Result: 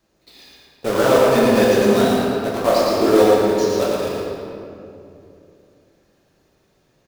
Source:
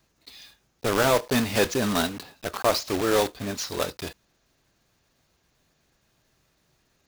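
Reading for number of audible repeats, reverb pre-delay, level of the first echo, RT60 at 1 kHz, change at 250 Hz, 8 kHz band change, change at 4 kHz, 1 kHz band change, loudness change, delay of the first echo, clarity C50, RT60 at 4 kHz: 1, 3 ms, −3.5 dB, 2.4 s, +10.0 dB, +1.0 dB, +2.5 dB, +7.5 dB, +8.5 dB, 113 ms, −3.5 dB, 1.6 s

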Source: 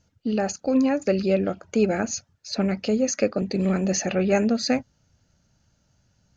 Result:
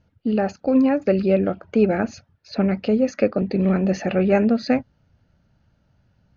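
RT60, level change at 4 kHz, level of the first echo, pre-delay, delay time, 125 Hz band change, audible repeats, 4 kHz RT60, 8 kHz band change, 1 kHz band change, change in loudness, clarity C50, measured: no reverb audible, −6.0 dB, no echo audible, no reverb audible, no echo audible, +3.5 dB, no echo audible, no reverb audible, can't be measured, +3.0 dB, +3.0 dB, no reverb audible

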